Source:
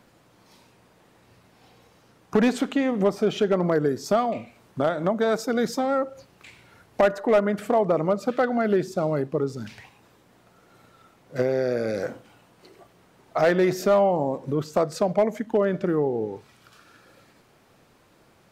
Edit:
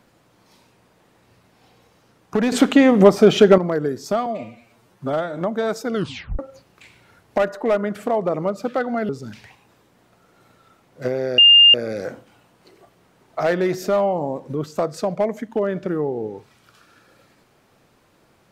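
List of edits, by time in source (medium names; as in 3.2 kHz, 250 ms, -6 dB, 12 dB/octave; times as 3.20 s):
2.52–3.58 s: gain +10.5 dB
4.26–5.00 s: stretch 1.5×
5.55 s: tape stop 0.47 s
8.72–9.43 s: delete
11.72 s: add tone 2.81 kHz -6.5 dBFS 0.36 s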